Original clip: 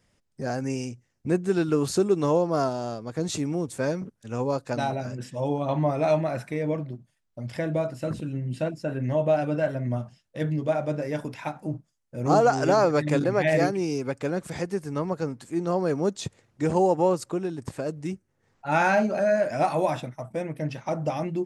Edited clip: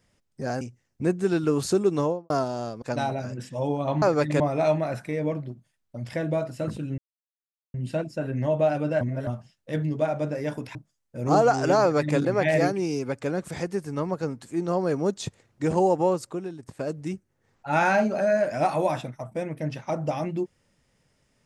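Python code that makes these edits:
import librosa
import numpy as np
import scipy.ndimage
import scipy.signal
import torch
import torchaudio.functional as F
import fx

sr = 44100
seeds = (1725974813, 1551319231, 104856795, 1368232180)

y = fx.studio_fade_out(x, sr, start_s=2.21, length_s=0.34)
y = fx.edit(y, sr, fx.cut(start_s=0.61, length_s=0.25),
    fx.cut(start_s=3.07, length_s=1.56),
    fx.insert_silence(at_s=8.41, length_s=0.76),
    fx.reverse_span(start_s=9.68, length_s=0.26),
    fx.cut(start_s=11.42, length_s=0.32),
    fx.duplicate(start_s=12.79, length_s=0.38, to_s=5.83),
    fx.fade_out_to(start_s=16.96, length_s=0.82, floor_db=-10.0), tone=tone)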